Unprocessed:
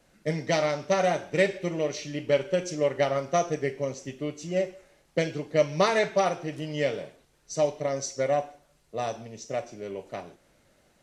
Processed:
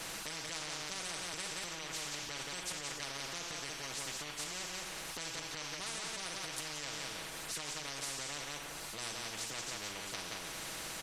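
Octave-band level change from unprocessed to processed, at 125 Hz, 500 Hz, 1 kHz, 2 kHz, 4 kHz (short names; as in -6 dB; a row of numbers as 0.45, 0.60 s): -17.5, -24.0, -14.5, -7.5, 0.0 dB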